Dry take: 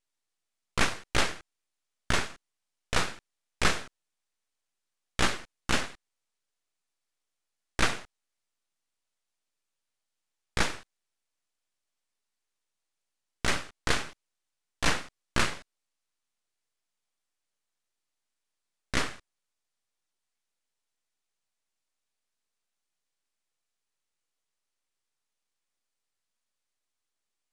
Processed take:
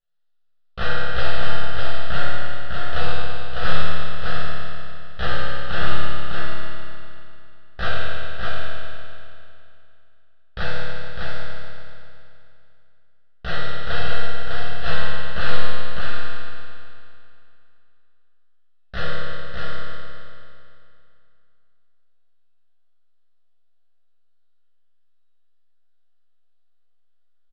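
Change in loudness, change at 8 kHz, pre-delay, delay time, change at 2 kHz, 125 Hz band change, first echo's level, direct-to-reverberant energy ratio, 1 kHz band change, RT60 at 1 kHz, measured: +1.5 dB, under -15 dB, 6 ms, 0.603 s, +5.0 dB, +11.5 dB, -3.5 dB, -12.0 dB, +6.0 dB, 2.6 s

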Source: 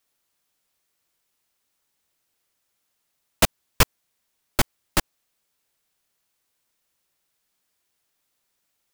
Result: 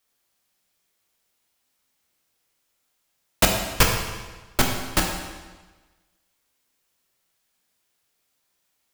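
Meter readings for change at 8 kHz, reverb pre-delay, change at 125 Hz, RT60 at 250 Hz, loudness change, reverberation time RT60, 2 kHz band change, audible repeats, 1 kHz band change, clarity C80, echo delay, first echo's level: +2.0 dB, 15 ms, +2.0 dB, 1.3 s, +1.5 dB, 1.3 s, +2.5 dB, none, +2.5 dB, 5.5 dB, none, none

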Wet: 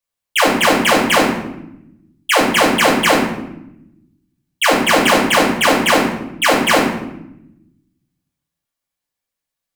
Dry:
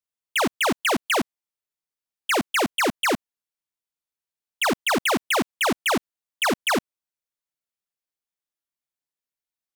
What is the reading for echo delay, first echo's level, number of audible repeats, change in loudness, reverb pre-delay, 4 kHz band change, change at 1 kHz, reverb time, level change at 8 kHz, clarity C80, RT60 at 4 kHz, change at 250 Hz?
none, none, none, +9.5 dB, 3 ms, +9.5 dB, +10.0 dB, 0.85 s, +8.5 dB, 7.0 dB, 0.60 s, +10.5 dB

